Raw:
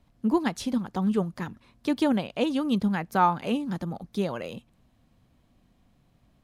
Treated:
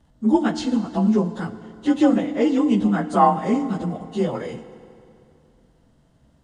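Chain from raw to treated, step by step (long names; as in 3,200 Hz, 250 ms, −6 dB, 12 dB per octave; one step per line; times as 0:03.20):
partials spread apart or drawn together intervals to 91%
parametric band 2,400 Hz −14.5 dB 0.24 octaves
feedback delay network reverb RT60 2.6 s, high-frequency decay 0.8×, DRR 11 dB
level +8 dB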